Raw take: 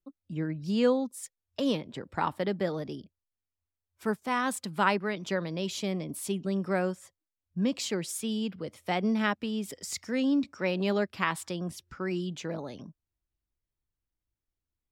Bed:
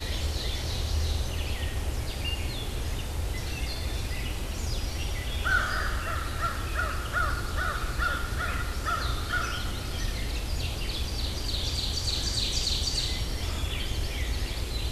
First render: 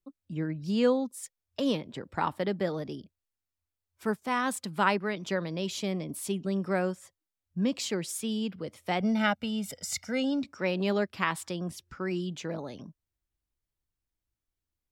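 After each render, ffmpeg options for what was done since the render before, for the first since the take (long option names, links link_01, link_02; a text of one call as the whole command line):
ffmpeg -i in.wav -filter_complex "[0:a]asettb=1/sr,asplit=3[link_01][link_02][link_03];[link_01]atrim=end=9.004[link_04];[link_02]atrim=start=9:end=10.43,asetpts=PTS-STARTPTS,afade=type=in:duration=0.004:curve=qsin,afade=type=out:start_time=1.426:duration=0.004:curve=qsin,aecho=1:1:1.4:0.81,atrim=end_sample=63063[link_05];[link_03]atrim=start=10.426[link_06];[link_04][link_05]acrossfade=duration=0.004:curve1=hsin:curve2=qsin[link_07];[link_07][link_06]acrossfade=duration=0.004:curve1=qsin:curve2=hsin" out.wav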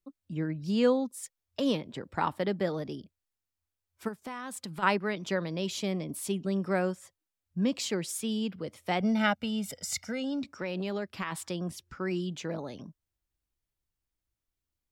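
ffmpeg -i in.wav -filter_complex "[0:a]asplit=3[link_01][link_02][link_03];[link_01]afade=type=out:start_time=4.07:duration=0.02[link_04];[link_02]acompressor=threshold=-35dB:ratio=5:attack=3.2:release=140:knee=1:detection=peak,afade=type=in:start_time=4.07:duration=0.02,afade=type=out:start_time=4.82:duration=0.02[link_05];[link_03]afade=type=in:start_time=4.82:duration=0.02[link_06];[link_04][link_05][link_06]amix=inputs=3:normalize=0,asplit=3[link_07][link_08][link_09];[link_07]afade=type=out:start_time=10.09:duration=0.02[link_10];[link_08]acompressor=threshold=-29dB:ratio=6:attack=3.2:release=140:knee=1:detection=peak,afade=type=in:start_time=10.09:duration=0.02,afade=type=out:start_time=11.31:duration=0.02[link_11];[link_09]afade=type=in:start_time=11.31:duration=0.02[link_12];[link_10][link_11][link_12]amix=inputs=3:normalize=0" out.wav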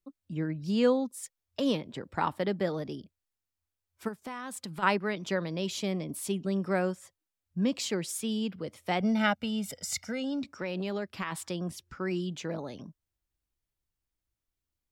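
ffmpeg -i in.wav -af anull out.wav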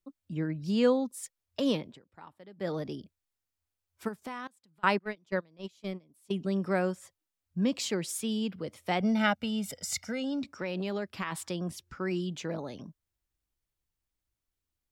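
ffmpeg -i in.wav -filter_complex "[0:a]asettb=1/sr,asplit=3[link_01][link_02][link_03];[link_01]atrim=end=4.474[link_04];[link_02]atrim=start=4.47:end=6.31,asetpts=PTS-STARTPTS,afade=type=in:duration=0.004:curve=qsin,afade=type=out:start_time=1.836:duration=0.004:curve=qsin,agate=range=-26dB:threshold=-30dB:ratio=16:release=100:detection=peak[link_05];[link_03]atrim=start=6.306[link_06];[link_04][link_05]acrossfade=duration=0.004:curve1=hsin:curve2=qsin[link_07];[link_07][link_06]acrossfade=duration=0.004:curve1=qsin:curve2=hsin,asplit=3[link_08][link_09][link_10];[link_08]atrim=end=1.99,asetpts=PTS-STARTPTS,afade=type=out:start_time=1.84:duration=0.15:silence=0.0891251[link_11];[link_09]atrim=start=1.99:end=2.56,asetpts=PTS-STARTPTS,volume=-21dB[link_12];[link_10]atrim=start=2.56,asetpts=PTS-STARTPTS,afade=type=in:duration=0.15:silence=0.0891251[link_13];[link_11][link_12][link_13]concat=n=3:v=0:a=1" out.wav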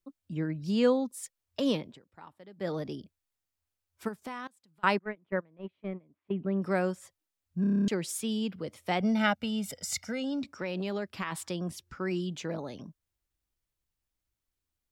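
ffmpeg -i in.wav -filter_complex "[0:a]asettb=1/sr,asplit=3[link_01][link_02][link_03];[link_01]atrim=end=4.994[link_04];[link_02]atrim=start=4.99:end=6.62,asetpts=PTS-STARTPTS,afade=type=in:duration=0.004:curve=qsin,afade=type=out:start_time=1.626:duration=0.004:curve=qsin,lowpass=frequency=2200:width=0.5412,lowpass=frequency=2200:width=1.3066[link_05];[link_03]atrim=start=6.616[link_06];[link_04][link_05]acrossfade=duration=0.004:curve1=hsin:curve2=qsin[link_07];[link_07][link_06]acrossfade=duration=0.004:curve1=qsin:curve2=hsin,asplit=10[link_08][link_09][link_10][link_11][link_12][link_13][link_14][link_15][link_16][link_17];[link_08]atrim=end=7.642[link_18];[link_09]atrim=start=7.608:end=7.642[link_19];[link_10]atrim=start=7.608:end=7.642[link_20];[link_11]atrim=start=7.608:end=7.642[link_21];[link_12]atrim=start=7.608:end=7.642[link_22];[link_13]atrim=start=7.608:end=7.642[link_23];[link_14]atrim=start=7.608:end=7.642[link_24];[link_15]atrim=start=7.608:end=7.642[link_25];[link_16]atrim=start=7.608:end=7.642[link_26];[link_17]atrim=start=7.878[link_27];[link_18][link_19]acrossfade=duration=0.004:curve1=hsin:curve2=hsin[link_28];[link_28][link_20]acrossfade=duration=0.004:curve1=hsin:curve2=hsin[link_29];[link_29][link_21]acrossfade=duration=0.004:curve1=hsin:curve2=hsin[link_30];[link_30][link_22]acrossfade=duration=0.004:curve1=hsin:curve2=hsin[link_31];[link_31][link_23]acrossfade=duration=0.004:curve1=hsin:curve2=hsin[link_32];[link_32][link_24]acrossfade=duration=0.004:curve1=hsin:curve2=hsin[link_33];[link_33][link_25]acrossfade=duration=0.004:curve1=hsin:curve2=hsin[link_34];[link_34][link_26]acrossfade=duration=0.004:curve1=hsin:curve2=hsin[link_35];[link_35][link_27]acrossfade=duration=0.004:curve1=hsin:curve2=hsin" out.wav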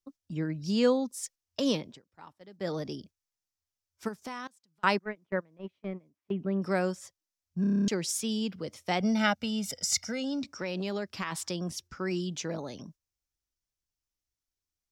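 ffmpeg -i in.wav -af "agate=range=-7dB:threshold=-52dB:ratio=16:detection=peak,equalizer=frequency=5700:width_type=o:width=0.7:gain=10" out.wav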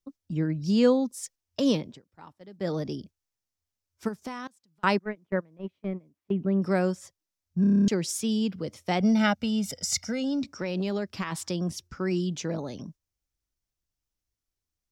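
ffmpeg -i in.wav -af "lowshelf=frequency=460:gain=6.5" out.wav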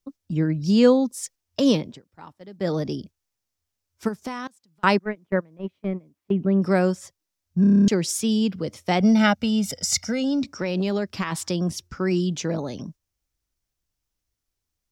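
ffmpeg -i in.wav -af "volume=5dB" out.wav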